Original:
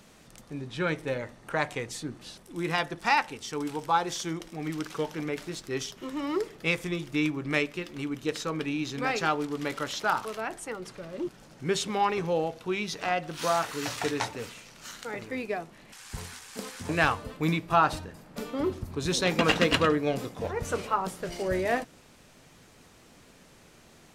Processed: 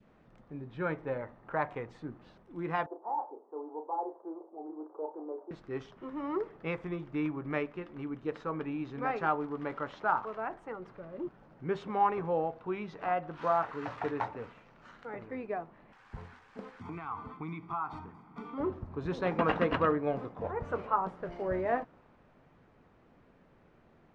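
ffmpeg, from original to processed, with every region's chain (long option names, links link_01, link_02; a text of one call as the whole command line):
ffmpeg -i in.wav -filter_complex "[0:a]asettb=1/sr,asplit=3[link_01][link_02][link_03];[link_01]atrim=end=2.864[link_04];[link_02]atrim=start=2.86:end=5.51,asetpts=PTS-STARTPTS,afade=type=in:duration=0.004:curve=qsin,afade=type=out:start_time=2.646:duration=0.004:curve=qsin,asoftclip=type=hard:threshold=-28dB,asuperpass=centerf=550:order=8:qfactor=0.87,asplit=2[link_05][link_06];[link_06]adelay=33,volume=-7dB[link_07];[link_05][link_07]amix=inputs=2:normalize=0,atrim=end_sample=116865[link_08];[link_03]atrim=start=5.506[link_09];[link_04][link_08]acrossfade=duration=0.004:curve1=hsin:curve2=qsin[link_10];[link_10][link_09]acrossfade=duration=0.004:curve1=qsin:curve2=hsin,asettb=1/sr,asplit=3[link_11][link_12][link_13];[link_11]atrim=end=16.814[link_14];[link_12]atrim=start=16.81:end=18.58,asetpts=PTS-STARTPTS,afade=type=in:duration=0.004:curve=qsin,afade=type=out:start_time=1.766:duration=0.004:curve=qsin,highpass=frequency=230:poles=1,acompressor=threshold=-33dB:ratio=6:attack=3.2:release=140:knee=1:detection=peak,aecho=1:1:0.9:0.99,atrim=end_sample=78057[link_15];[link_13]atrim=start=18.576[link_16];[link_14][link_15]acrossfade=duration=0.004:curve1=hsin:curve2=qsin[link_17];[link_17][link_16]acrossfade=duration=0.004:curve1=qsin:curve2=hsin,lowpass=1500,adynamicequalizer=threshold=0.00891:dfrequency=1000:dqfactor=0.97:tfrequency=1000:tqfactor=0.97:attack=5:release=100:ratio=0.375:range=3:mode=boostabove:tftype=bell,volume=-5.5dB" out.wav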